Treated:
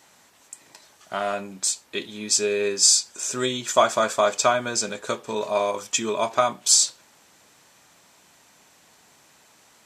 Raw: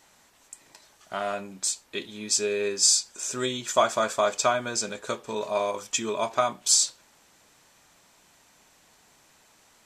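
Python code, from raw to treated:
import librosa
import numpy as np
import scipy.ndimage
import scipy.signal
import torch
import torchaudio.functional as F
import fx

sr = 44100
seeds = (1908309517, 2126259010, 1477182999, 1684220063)

y = scipy.signal.sosfilt(scipy.signal.butter(2, 79.0, 'highpass', fs=sr, output='sos'), x)
y = y * 10.0 ** (3.5 / 20.0)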